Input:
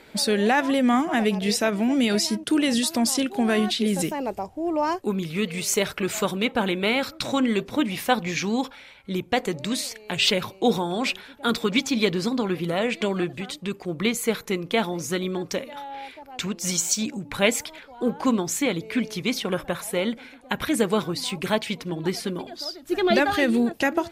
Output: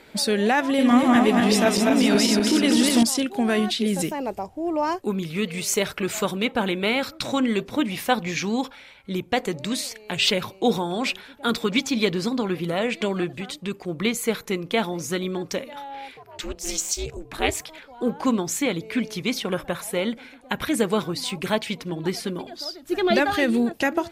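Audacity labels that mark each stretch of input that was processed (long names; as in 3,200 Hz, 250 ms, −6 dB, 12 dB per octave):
0.660000	3.030000	feedback delay that plays each chunk backwards 124 ms, feedback 72%, level −2 dB
16.170000	17.690000	ring modulation 160 Hz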